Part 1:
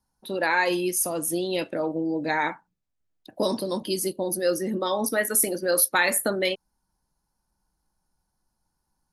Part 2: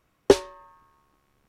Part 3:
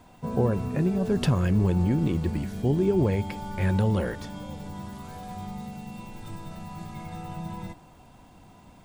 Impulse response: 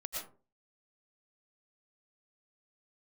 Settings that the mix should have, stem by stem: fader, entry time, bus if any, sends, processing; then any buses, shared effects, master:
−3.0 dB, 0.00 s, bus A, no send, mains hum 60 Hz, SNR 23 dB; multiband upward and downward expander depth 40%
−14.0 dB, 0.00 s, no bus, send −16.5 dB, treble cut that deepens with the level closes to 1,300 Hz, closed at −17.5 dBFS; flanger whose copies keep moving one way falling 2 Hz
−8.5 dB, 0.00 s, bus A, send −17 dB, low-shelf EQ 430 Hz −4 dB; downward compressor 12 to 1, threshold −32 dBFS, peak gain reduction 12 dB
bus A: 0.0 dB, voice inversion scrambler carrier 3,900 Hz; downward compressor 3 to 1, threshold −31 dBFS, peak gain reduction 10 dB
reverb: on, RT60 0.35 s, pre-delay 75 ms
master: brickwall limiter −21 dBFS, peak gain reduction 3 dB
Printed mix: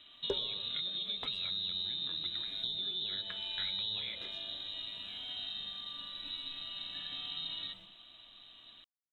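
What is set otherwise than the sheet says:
stem 1: muted
stem 3 −8.5 dB → −2.5 dB

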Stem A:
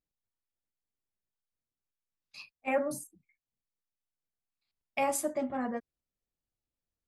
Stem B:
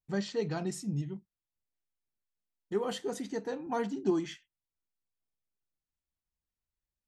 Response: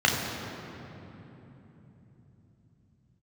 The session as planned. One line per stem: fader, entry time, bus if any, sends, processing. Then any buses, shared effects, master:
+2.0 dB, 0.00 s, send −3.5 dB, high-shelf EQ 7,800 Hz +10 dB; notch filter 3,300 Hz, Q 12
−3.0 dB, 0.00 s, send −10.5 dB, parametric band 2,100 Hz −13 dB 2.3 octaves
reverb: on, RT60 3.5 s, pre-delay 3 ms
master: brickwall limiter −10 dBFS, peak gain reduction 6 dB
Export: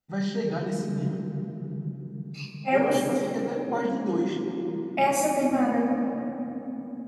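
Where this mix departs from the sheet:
stem A +2.0 dB → −5.0 dB
stem B: missing parametric band 2,100 Hz −13 dB 2.3 octaves

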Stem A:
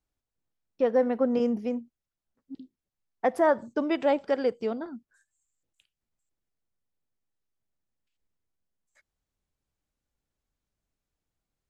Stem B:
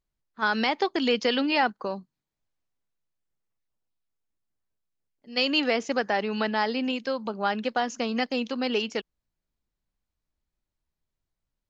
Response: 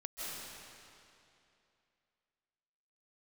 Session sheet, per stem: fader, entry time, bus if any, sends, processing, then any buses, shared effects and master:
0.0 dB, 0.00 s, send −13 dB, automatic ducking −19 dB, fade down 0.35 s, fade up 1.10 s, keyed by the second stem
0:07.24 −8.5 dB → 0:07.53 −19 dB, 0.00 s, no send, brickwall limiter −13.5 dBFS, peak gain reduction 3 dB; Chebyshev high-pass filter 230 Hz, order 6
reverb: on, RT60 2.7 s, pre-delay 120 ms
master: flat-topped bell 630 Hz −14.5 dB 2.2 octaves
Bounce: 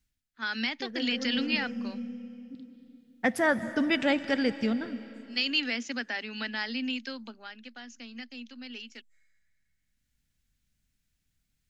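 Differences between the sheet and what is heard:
stem A 0.0 dB → +8.0 dB
stem B −8.5 dB → −0.5 dB

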